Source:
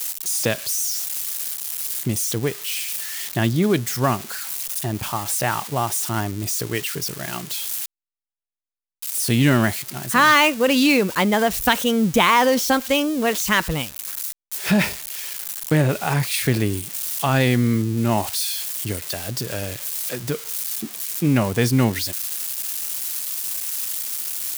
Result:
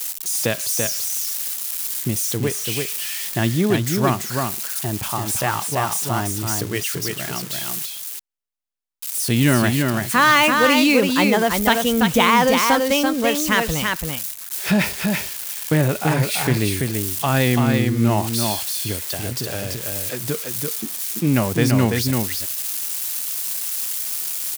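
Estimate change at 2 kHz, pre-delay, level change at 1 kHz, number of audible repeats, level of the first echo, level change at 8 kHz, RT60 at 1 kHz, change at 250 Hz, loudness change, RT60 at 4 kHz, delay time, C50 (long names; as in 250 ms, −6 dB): +1.5 dB, no reverb audible, +1.5 dB, 1, −4.0 dB, +1.5 dB, no reverb audible, +1.5 dB, +1.5 dB, no reverb audible, 336 ms, no reverb audible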